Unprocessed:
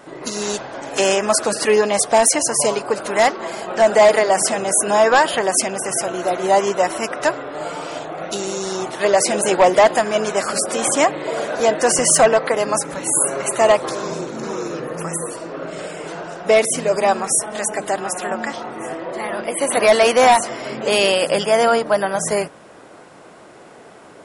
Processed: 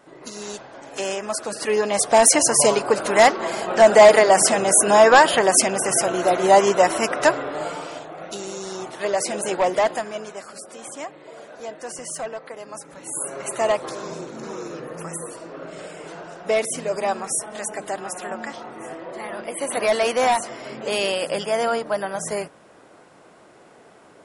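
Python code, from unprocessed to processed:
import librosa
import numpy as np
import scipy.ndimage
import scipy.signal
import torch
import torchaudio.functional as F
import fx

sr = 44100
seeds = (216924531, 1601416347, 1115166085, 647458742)

y = fx.gain(x, sr, db=fx.line((1.43, -10.0), (2.34, 1.5), (7.48, 1.5), (8.05, -7.5), (9.87, -7.5), (10.5, -18.0), (12.67, -18.0), (13.53, -7.0)))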